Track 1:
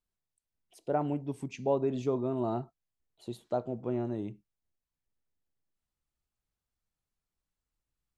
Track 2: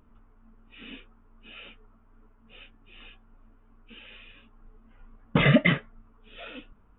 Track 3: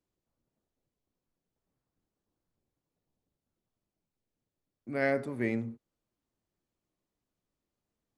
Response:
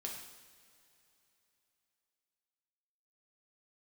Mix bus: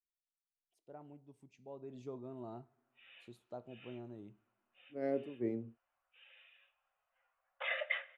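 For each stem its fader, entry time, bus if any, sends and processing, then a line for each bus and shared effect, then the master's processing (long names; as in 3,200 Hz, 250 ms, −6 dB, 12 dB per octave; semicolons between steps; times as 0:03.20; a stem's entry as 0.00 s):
0:01.66 −23.5 dB → 0:02.04 −16 dB, 0.00 s, send −19.5 dB, no processing
−13.0 dB, 2.25 s, send −11 dB, Chebyshev high-pass with heavy ripple 510 Hz, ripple 6 dB
−13.0 dB, 0.00 s, no send, downward expander −35 dBFS; drawn EQ curve 190 Hz 0 dB, 350 Hz +10 dB, 1,700 Hz −11 dB; multiband upward and downward expander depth 100%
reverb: on, pre-delay 3 ms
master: no processing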